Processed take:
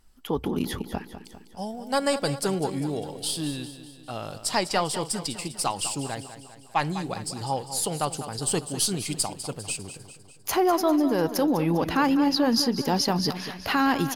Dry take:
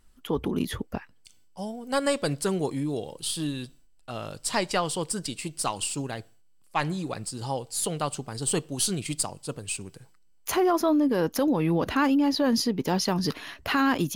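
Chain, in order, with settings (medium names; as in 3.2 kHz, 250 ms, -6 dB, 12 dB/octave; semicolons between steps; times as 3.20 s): graphic EQ with 31 bands 800 Hz +5 dB, 5 kHz +5 dB, 12.5 kHz +4 dB; feedback delay 200 ms, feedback 54%, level -12 dB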